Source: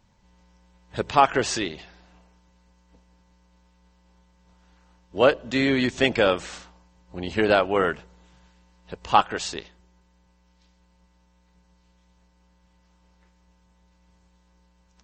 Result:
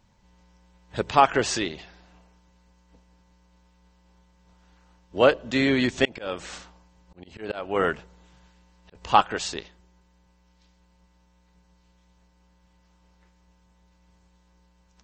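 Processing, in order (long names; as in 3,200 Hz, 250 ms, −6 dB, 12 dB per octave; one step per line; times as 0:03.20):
0:06.05–0:08.95: volume swells 342 ms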